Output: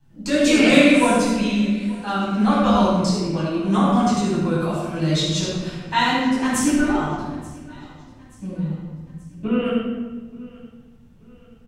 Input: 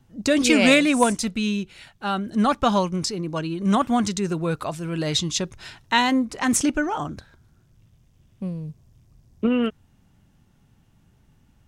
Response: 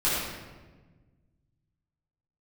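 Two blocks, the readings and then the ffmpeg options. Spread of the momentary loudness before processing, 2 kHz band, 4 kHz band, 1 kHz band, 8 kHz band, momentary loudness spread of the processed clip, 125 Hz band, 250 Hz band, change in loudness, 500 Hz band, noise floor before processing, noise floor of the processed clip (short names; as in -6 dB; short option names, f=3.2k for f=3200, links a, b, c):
16 LU, +1.5 dB, +1.0 dB, +2.5 dB, -1.5 dB, 20 LU, +5.5 dB, +4.0 dB, +2.5 dB, +3.0 dB, -60 dBFS, -49 dBFS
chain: -filter_complex "[0:a]aecho=1:1:880|1760|2640:0.075|0.0375|0.0187[a];[1:a]atrim=start_sample=2205[b];[a][b]afir=irnorm=-1:irlink=0,volume=-11dB"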